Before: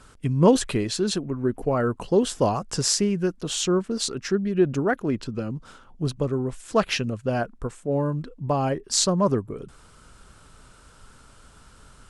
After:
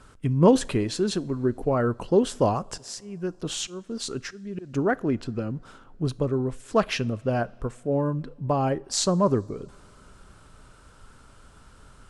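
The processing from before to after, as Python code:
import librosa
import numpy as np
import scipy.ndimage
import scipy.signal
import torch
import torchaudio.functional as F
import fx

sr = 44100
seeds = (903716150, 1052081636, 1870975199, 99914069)

y = fx.high_shelf(x, sr, hz=2500.0, db=-5.0)
y = fx.auto_swell(y, sr, attack_ms=472.0, at=(2.73, 4.73), fade=0.02)
y = fx.rev_double_slope(y, sr, seeds[0], early_s=0.43, late_s=3.6, knee_db=-18, drr_db=19.5)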